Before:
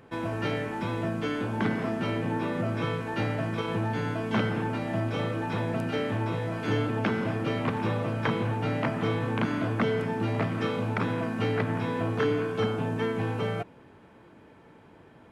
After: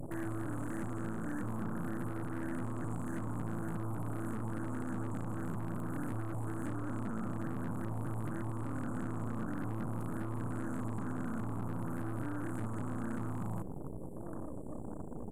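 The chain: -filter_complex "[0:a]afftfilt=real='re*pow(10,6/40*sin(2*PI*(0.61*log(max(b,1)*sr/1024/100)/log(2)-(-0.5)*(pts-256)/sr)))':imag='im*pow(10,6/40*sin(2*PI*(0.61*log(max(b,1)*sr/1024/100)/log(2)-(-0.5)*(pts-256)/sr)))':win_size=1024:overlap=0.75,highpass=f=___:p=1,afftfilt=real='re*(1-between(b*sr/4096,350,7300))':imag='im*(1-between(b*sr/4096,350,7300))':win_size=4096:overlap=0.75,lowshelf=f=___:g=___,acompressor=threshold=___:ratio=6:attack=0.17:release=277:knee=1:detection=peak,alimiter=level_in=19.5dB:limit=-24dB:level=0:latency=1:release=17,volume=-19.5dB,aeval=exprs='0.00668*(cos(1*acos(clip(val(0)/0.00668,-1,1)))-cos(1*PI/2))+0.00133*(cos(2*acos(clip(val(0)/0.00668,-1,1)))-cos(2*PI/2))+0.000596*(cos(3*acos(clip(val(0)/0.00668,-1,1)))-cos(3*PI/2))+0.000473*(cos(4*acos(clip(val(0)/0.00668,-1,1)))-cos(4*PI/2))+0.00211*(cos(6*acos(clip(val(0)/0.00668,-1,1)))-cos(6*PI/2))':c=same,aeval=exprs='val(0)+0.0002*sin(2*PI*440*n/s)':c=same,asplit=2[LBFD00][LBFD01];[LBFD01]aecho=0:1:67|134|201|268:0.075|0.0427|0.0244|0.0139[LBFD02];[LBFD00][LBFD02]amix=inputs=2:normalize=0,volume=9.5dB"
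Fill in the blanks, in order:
45, 270, 3, -35dB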